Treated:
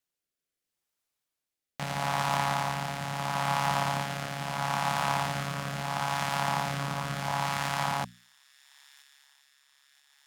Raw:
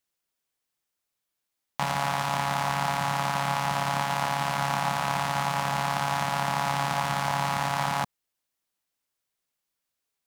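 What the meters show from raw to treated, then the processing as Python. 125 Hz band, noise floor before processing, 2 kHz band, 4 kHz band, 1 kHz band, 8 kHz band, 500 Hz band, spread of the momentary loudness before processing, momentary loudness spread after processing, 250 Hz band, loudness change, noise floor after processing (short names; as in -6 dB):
-1.5 dB, -84 dBFS, -3.0 dB, -2.0 dB, -3.5 dB, -2.5 dB, -2.5 dB, 1 LU, 6 LU, -2.0 dB, -3.0 dB, under -85 dBFS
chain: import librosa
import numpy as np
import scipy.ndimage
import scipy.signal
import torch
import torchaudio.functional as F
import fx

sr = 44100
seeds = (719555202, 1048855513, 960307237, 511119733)

y = fx.hum_notches(x, sr, base_hz=60, count=4)
y = fx.echo_wet_highpass(y, sr, ms=978, feedback_pct=67, hz=2800.0, wet_db=-20)
y = fx.rotary(y, sr, hz=0.75)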